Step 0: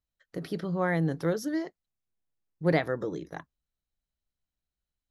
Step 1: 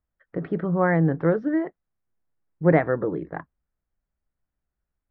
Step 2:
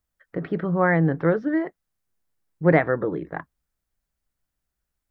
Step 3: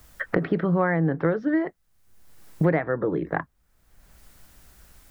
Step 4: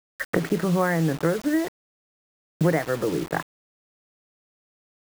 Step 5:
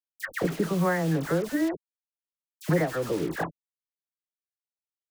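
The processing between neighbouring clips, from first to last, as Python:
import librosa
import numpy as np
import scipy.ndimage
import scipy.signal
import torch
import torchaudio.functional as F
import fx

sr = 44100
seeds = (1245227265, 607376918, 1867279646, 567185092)

y1 = scipy.signal.sosfilt(scipy.signal.butter(4, 1900.0, 'lowpass', fs=sr, output='sos'), x)
y1 = y1 * librosa.db_to_amplitude(7.0)
y2 = fx.high_shelf(y1, sr, hz=2200.0, db=10.0)
y3 = fx.band_squash(y2, sr, depth_pct=100)
y3 = y3 * librosa.db_to_amplitude(-1.0)
y4 = fx.quant_dither(y3, sr, seeds[0], bits=6, dither='none')
y5 = fx.dispersion(y4, sr, late='lows', ms=83.0, hz=1400.0)
y5 = y5 * librosa.db_to_amplitude(-3.0)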